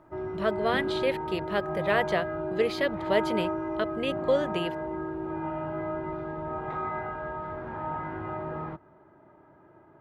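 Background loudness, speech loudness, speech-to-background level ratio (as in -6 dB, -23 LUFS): -33.5 LUFS, -30.0 LUFS, 3.5 dB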